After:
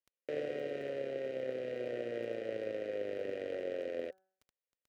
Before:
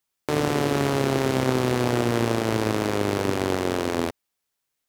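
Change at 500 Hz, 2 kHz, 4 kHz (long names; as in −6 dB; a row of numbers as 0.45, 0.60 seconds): −11.0, −18.0, −22.5 decibels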